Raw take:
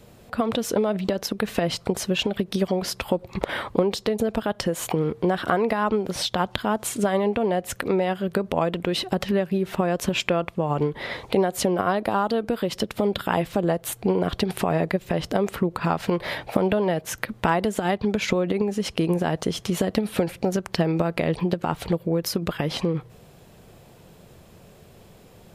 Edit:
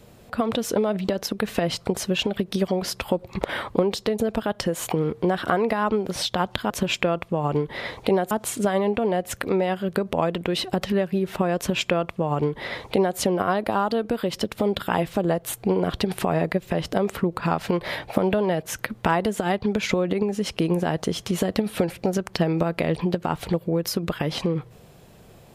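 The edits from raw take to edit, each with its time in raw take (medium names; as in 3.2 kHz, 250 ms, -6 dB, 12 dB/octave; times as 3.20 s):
9.96–11.57 s: copy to 6.70 s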